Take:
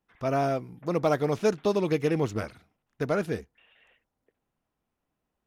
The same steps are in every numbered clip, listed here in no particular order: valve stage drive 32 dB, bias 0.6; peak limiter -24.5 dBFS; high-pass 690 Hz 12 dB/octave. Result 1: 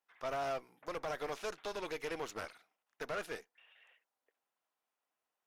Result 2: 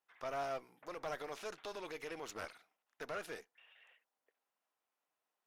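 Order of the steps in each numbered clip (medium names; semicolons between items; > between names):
high-pass > peak limiter > valve stage; peak limiter > high-pass > valve stage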